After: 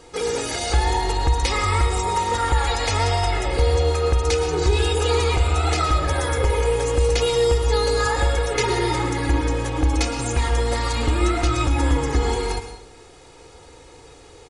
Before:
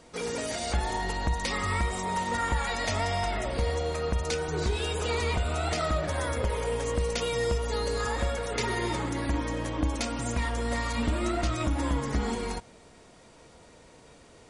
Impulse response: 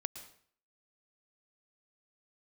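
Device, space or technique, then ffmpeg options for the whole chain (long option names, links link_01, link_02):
microphone above a desk: -filter_complex "[0:a]aecho=1:1:2.4:0.72[link_01];[1:a]atrim=start_sample=2205[link_02];[link_01][link_02]afir=irnorm=-1:irlink=0,volume=7dB"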